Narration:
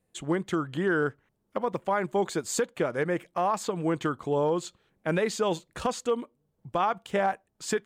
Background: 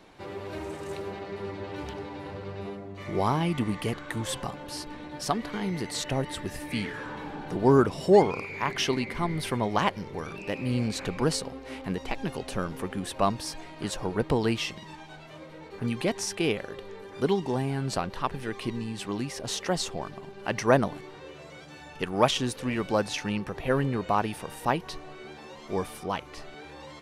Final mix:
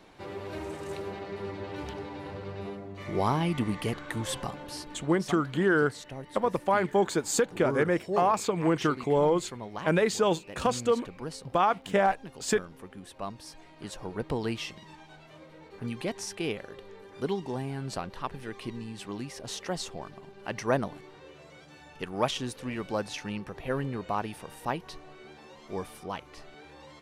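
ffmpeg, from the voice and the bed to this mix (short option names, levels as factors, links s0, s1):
-filter_complex "[0:a]adelay=4800,volume=1.26[s0];[1:a]volume=2,afade=t=out:st=4.57:d=0.8:silence=0.266073,afade=t=in:st=13.26:d=1.19:silence=0.446684[s1];[s0][s1]amix=inputs=2:normalize=0"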